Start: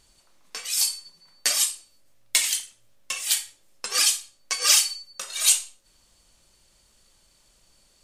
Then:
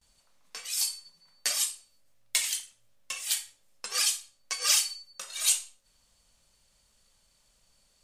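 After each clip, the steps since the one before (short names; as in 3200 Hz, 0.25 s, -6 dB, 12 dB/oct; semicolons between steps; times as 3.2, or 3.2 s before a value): gate with hold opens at -52 dBFS; bell 340 Hz -10.5 dB 0.29 oct; gain -6 dB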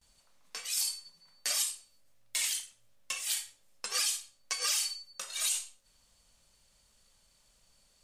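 limiter -20 dBFS, peak gain reduction 11 dB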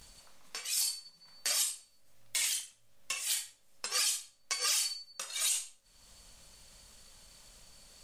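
upward compressor, threshold -45 dBFS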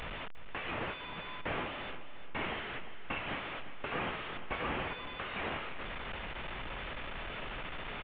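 delta modulation 16 kbps, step -38 dBFS; feedback echo 0.35 s, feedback 35%, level -12 dB; gain +4 dB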